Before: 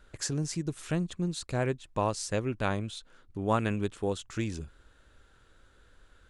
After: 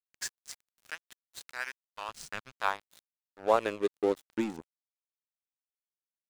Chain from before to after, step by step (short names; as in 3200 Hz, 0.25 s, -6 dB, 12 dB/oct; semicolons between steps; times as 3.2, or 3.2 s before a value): high-pass sweep 1600 Hz -> 250 Hz, 1.97–4.5; crossover distortion -36.5 dBFS; 2.08–2.61 tone controls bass +13 dB, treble -3 dB